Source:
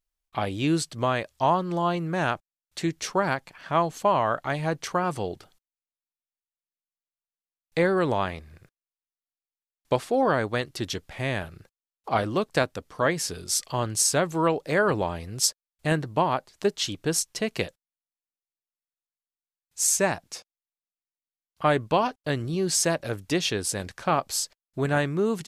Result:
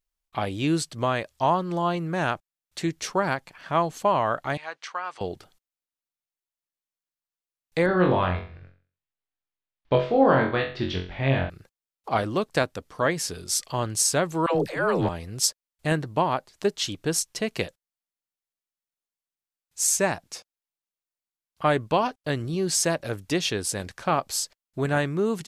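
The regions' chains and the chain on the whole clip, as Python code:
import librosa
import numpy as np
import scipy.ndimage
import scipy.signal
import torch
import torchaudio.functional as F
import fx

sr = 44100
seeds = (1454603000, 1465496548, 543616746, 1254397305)

y = fx.chain(x, sr, fx.highpass(hz=1100.0, slope=12),
    fx.air_absorb(metres=120.0), at=(4.57, 5.21))
y = fx.chain(y, sr, fx.lowpass(hz=3800.0, slope=24),
    fx.low_shelf(hz=95.0, db=8.0),
    fx.room_flutter(wall_m=3.8, rt60_s=0.4), at=(7.86, 11.5))
y = fx.chain(y, sr, fx.transient(attack_db=-11, sustain_db=8),
    fx.dispersion(late='lows', ms=95.0, hz=460.0), at=(14.46, 15.09))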